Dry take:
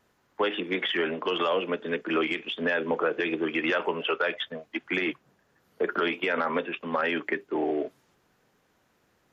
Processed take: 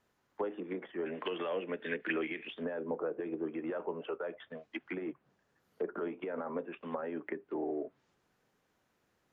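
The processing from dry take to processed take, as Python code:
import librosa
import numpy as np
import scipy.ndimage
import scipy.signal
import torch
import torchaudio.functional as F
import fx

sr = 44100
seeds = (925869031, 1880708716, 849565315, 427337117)

y = fx.env_lowpass_down(x, sr, base_hz=800.0, full_db=-25.0)
y = fx.band_shelf(y, sr, hz=2700.0, db=15.5, octaves=1.7, at=(1.05, 2.46), fade=0.02)
y = F.gain(torch.from_numpy(y), -8.0).numpy()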